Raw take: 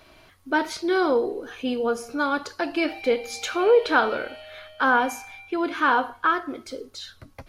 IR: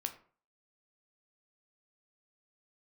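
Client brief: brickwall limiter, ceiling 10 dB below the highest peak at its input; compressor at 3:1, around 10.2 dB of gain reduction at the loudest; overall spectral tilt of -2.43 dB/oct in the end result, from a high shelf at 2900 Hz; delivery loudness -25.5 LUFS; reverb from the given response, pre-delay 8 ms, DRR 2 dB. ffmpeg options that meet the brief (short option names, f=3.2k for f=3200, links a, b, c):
-filter_complex "[0:a]highshelf=f=2.9k:g=5,acompressor=threshold=-27dB:ratio=3,alimiter=level_in=0.5dB:limit=-24dB:level=0:latency=1,volume=-0.5dB,asplit=2[a][b];[1:a]atrim=start_sample=2205,adelay=8[c];[b][c]afir=irnorm=-1:irlink=0,volume=-2dB[d];[a][d]amix=inputs=2:normalize=0,volume=6.5dB"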